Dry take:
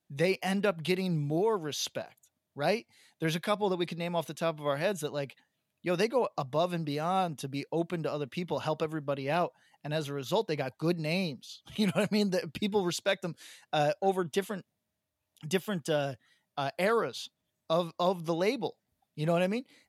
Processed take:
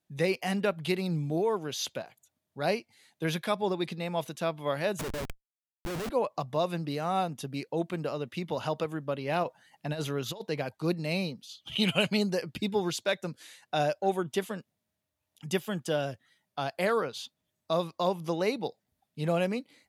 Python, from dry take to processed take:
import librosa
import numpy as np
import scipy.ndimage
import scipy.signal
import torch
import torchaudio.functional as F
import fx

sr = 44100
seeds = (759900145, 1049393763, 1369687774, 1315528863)

y = fx.schmitt(x, sr, flips_db=-37.5, at=(4.99, 6.1))
y = fx.over_compress(y, sr, threshold_db=-33.0, ratio=-0.5, at=(9.43, 10.4), fade=0.02)
y = fx.peak_eq(y, sr, hz=3000.0, db=14.0, octaves=0.62, at=(11.61, 12.17))